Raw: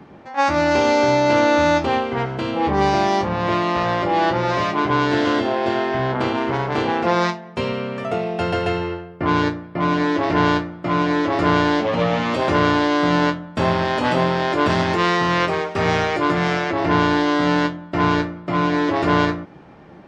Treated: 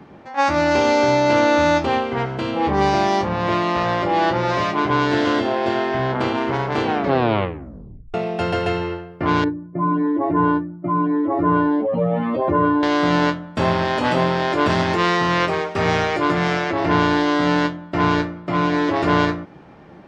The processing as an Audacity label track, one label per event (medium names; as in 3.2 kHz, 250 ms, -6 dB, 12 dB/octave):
6.830000	6.830000	tape stop 1.31 s
9.440000	12.830000	spectral contrast enhancement exponent 2.1